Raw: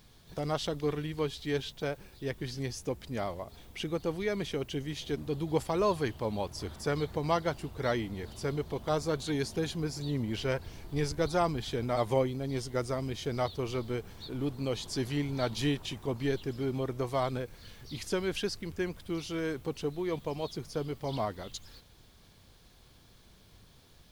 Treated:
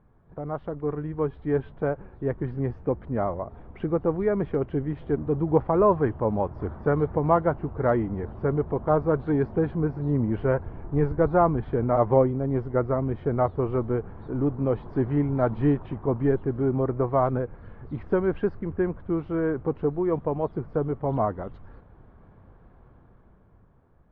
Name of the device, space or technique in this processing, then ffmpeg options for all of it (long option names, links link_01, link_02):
action camera in a waterproof case: -af "lowpass=frequency=1400:width=0.5412,lowpass=frequency=1400:width=1.3066,dynaudnorm=framelen=110:gausssize=21:maxgain=8.5dB" -ar 32000 -c:a aac -b:a 48k